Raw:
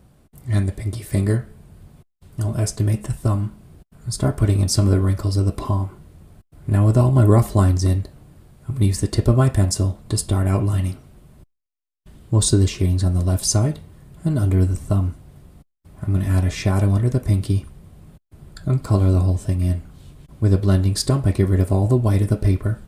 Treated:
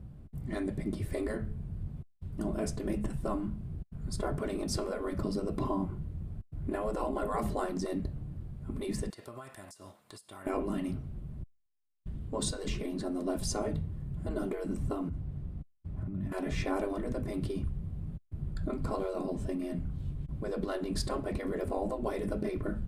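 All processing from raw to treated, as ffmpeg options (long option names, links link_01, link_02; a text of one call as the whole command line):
ffmpeg -i in.wav -filter_complex "[0:a]asettb=1/sr,asplit=3[link_01][link_02][link_03];[link_01]atrim=end=9.104[link_04];[link_02]atrim=start=9.1:end=10.47,asetpts=PTS-STARTPTS,afade=type=in:duration=0.004:curve=qsin,afade=type=out:start_time=1.366:duration=0.004:curve=qsin,highpass=980,highshelf=frequency=6900:gain=7.5,acompressor=threshold=-36dB:ratio=6:attack=3.2:release=140:knee=1:detection=peak[link_05];[link_03]atrim=start=10.466[link_06];[link_04][link_05]acrossfade=duration=0.004:curve1=hsin:curve2=qsin[link_07];[link_07][link_06]acrossfade=duration=0.004:curve1=qsin:curve2=hsin,asettb=1/sr,asplit=3[link_08][link_09][link_10];[link_08]atrim=end=15.094[link_11];[link_09]atrim=start=15.09:end=16.32,asetpts=PTS-STARTPTS,afade=type=in:duration=0.004:curve=qsin,afade=type=out:start_time=1.226:duration=0.004:curve=qsin,acompressor=threshold=-30dB:ratio=8:attack=3.2:release=140:knee=1:detection=peak,highshelf=frequency=6700:gain=-7.5[link_12];[link_10]atrim=start=16.316[link_13];[link_11][link_12]acrossfade=duration=0.004:curve1=hsin:curve2=qsin[link_14];[link_14][link_13]acrossfade=duration=0.004:curve1=qsin:curve2=hsin,bass=frequency=250:gain=7,treble=frequency=4000:gain=-8,afftfilt=real='re*lt(hypot(re,im),0.447)':imag='im*lt(hypot(re,im),0.447)':win_size=1024:overlap=0.75,lowshelf=frequency=450:gain=8.5,volume=-8.5dB" out.wav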